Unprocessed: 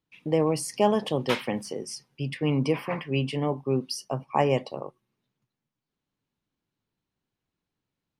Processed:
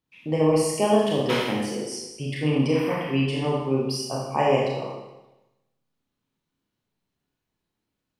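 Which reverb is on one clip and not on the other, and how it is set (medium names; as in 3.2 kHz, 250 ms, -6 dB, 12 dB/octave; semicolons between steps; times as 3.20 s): Schroeder reverb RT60 1 s, combs from 26 ms, DRR -3.5 dB; trim -1.5 dB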